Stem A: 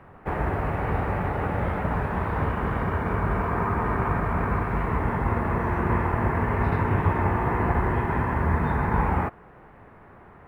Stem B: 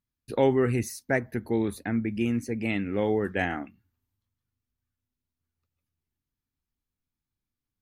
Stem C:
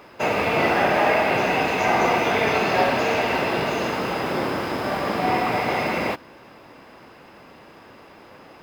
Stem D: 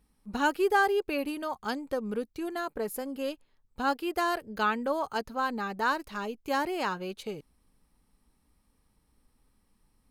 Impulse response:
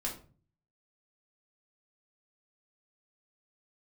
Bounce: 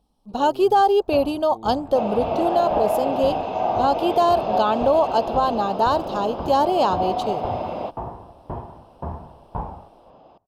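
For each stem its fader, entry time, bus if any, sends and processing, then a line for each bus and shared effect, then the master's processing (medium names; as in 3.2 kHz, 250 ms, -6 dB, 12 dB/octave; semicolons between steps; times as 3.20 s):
-3.5 dB, 0.60 s, no send, sawtooth tremolo in dB decaying 1.9 Hz, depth 35 dB
-16.0 dB, 0.00 s, no send, none
-7.0 dB, 1.75 s, no send, none
+3.0 dB, 0.00 s, no send, level rider gain up to 7 dB; tone controls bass -3 dB, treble +11 dB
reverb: none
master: FFT filter 440 Hz 0 dB, 680 Hz +9 dB, 1.1 kHz -1 dB, 2 kHz -21 dB, 3.1 kHz -2 dB, 9.2 kHz -20 dB; peak limiter -9.5 dBFS, peak gain reduction 7.5 dB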